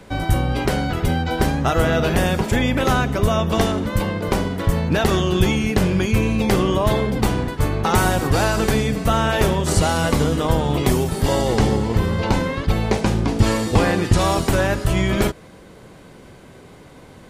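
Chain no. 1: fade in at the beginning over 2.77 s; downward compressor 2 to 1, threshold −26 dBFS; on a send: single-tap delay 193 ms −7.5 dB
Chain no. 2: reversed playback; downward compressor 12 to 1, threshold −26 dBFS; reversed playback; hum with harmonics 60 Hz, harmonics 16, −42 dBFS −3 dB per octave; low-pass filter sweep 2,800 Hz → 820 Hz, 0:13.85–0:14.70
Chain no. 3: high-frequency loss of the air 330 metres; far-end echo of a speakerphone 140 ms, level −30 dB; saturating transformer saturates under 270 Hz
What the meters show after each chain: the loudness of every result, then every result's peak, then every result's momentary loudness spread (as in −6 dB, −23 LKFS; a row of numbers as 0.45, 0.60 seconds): −25.5, −30.0, −22.5 LKFS; −9.0, −15.5, −5.5 dBFS; 13, 3, 3 LU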